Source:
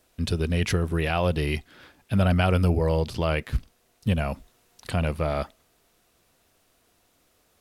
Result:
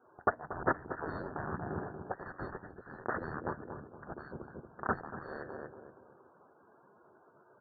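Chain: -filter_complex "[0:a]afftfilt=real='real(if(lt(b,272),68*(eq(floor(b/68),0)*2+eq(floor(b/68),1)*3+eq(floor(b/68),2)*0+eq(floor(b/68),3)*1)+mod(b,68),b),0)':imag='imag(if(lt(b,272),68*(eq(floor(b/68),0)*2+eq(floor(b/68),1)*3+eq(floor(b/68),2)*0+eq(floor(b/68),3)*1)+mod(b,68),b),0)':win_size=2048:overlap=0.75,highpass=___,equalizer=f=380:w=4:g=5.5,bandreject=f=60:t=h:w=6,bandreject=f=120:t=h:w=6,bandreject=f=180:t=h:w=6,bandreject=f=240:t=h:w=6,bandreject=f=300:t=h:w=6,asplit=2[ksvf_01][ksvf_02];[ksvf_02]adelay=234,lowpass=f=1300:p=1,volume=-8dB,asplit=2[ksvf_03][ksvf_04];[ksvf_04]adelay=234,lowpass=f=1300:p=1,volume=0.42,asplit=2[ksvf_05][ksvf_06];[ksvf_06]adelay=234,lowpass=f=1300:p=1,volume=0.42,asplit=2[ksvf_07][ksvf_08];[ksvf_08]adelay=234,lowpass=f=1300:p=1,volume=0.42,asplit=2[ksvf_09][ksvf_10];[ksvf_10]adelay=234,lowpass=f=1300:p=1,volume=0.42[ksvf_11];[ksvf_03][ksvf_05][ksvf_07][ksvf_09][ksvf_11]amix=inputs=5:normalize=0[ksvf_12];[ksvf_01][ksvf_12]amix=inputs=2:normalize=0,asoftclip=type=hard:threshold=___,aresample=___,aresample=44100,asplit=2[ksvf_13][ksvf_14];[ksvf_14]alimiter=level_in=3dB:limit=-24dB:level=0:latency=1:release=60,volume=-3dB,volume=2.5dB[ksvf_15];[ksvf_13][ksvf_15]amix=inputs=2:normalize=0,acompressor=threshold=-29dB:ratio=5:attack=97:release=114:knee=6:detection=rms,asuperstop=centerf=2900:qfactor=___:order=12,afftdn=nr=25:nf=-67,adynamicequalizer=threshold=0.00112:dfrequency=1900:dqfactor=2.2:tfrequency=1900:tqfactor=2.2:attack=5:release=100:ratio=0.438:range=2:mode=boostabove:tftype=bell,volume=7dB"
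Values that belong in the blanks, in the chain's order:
100, -22dB, 8000, 0.84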